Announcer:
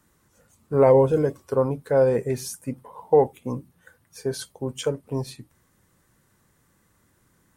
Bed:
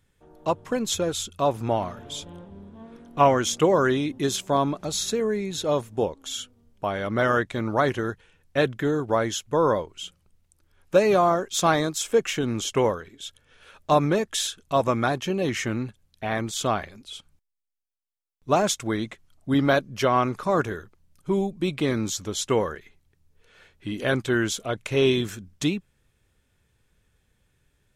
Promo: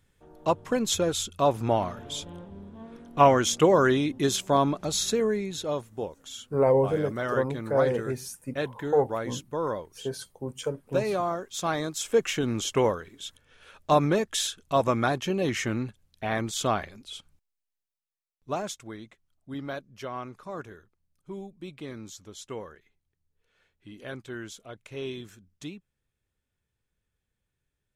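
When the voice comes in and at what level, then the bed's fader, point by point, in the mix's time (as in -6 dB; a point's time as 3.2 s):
5.80 s, -5.5 dB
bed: 5.24 s 0 dB
5.91 s -8.5 dB
11.63 s -8.5 dB
12.2 s -1.5 dB
17.8 s -1.5 dB
18.99 s -15 dB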